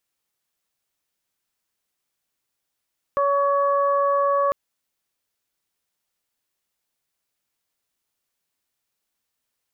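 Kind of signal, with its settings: steady additive tone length 1.35 s, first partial 563 Hz, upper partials 0/-18.5 dB, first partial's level -20 dB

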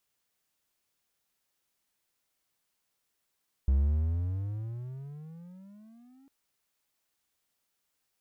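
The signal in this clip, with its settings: gliding synth tone triangle, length 2.60 s, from 65.3 Hz, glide +25 st, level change -35.5 dB, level -18.5 dB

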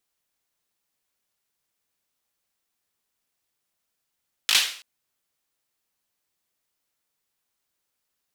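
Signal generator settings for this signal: hand clap length 0.33 s, apart 19 ms, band 3.1 kHz, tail 0.47 s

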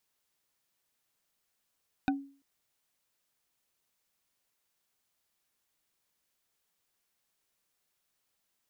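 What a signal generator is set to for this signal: wood hit bar, length 0.34 s, lowest mode 277 Hz, decay 0.42 s, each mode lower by 3 dB, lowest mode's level -23 dB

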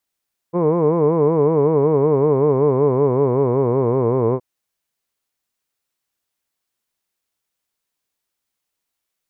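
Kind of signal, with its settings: formant-synthesis vowel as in hood, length 3.87 s, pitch 165 Hz, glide -5.5 st, vibrato depth 1.4 st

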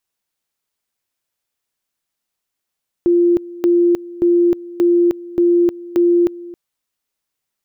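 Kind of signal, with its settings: two-level tone 347 Hz -9.5 dBFS, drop 19.5 dB, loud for 0.31 s, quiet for 0.27 s, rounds 6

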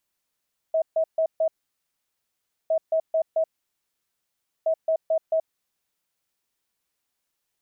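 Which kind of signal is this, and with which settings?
beep pattern sine 643 Hz, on 0.08 s, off 0.14 s, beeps 4, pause 1.22 s, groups 3, -18.5 dBFS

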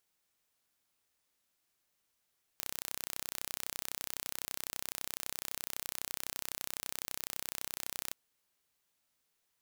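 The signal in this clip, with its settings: pulse train 31.9 per s, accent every 0, -10.5 dBFS 5.52 s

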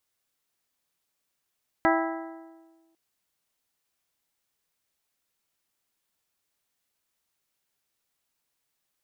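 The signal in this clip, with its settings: metal hit bell, length 1.10 s, lowest mode 328 Hz, modes 7, decay 1.48 s, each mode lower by 1 dB, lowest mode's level -22 dB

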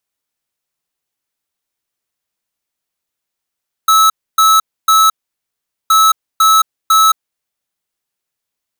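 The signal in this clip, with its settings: beep pattern square 1.3 kHz, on 0.22 s, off 0.28 s, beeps 3, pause 0.80 s, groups 2, -8.5 dBFS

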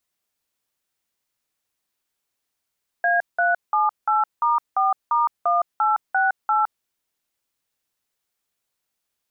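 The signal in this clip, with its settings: DTMF "A378*4*1868", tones 163 ms, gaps 182 ms, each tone -19 dBFS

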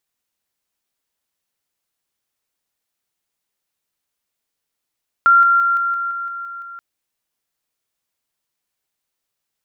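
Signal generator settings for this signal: level ladder 1.38 kHz -7.5 dBFS, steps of -3 dB, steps 9, 0.17 s 0.00 s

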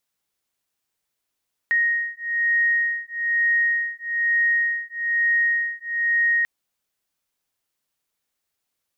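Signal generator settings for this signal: beating tones 1.87 kHz, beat 1.1 Hz, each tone -22 dBFS 4.74 s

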